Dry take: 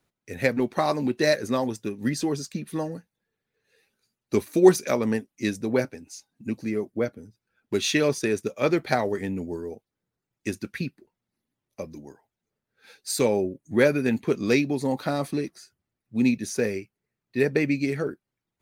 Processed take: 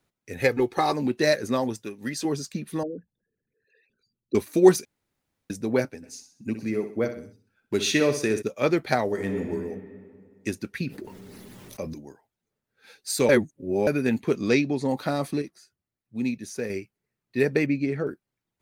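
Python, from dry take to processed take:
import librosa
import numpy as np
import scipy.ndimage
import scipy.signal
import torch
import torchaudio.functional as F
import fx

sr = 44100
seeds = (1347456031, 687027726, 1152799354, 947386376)

y = fx.comb(x, sr, ms=2.4, depth=0.65, at=(0.4, 0.93))
y = fx.low_shelf(y, sr, hz=350.0, db=-10.0, at=(1.82, 2.25))
y = fx.envelope_sharpen(y, sr, power=3.0, at=(2.83, 4.35))
y = fx.echo_feedback(y, sr, ms=63, feedback_pct=42, wet_db=-10.0, at=(6.02, 8.41), fade=0.02)
y = fx.reverb_throw(y, sr, start_s=9.04, length_s=0.4, rt60_s=2.2, drr_db=2.5)
y = fx.env_flatten(y, sr, amount_pct=70, at=(10.87, 11.94))
y = fx.lowpass(y, sr, hz=7300.0, slope=12, at=(14.48, 14.89))
y = fx.lowpass(y, sr, hz=1700.0, slope=6, at=(17.66, 18.07))
y = fx.edit(y, sr, fx.room_tone_fill(start_s=4.85, length_s=0.65),
    fx.reverse_span(start_s=13.29, length_s=0.58),
    fx.clip_gain(start_s=15.42, length_s=1.28, db=-6.0), tone=tone)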